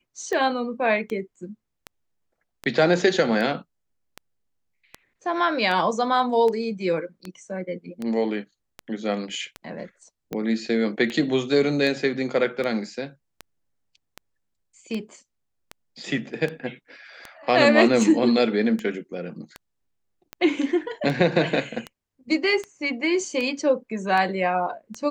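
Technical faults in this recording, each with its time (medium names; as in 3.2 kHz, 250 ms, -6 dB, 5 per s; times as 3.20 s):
tick 78 rpm -17 dBFS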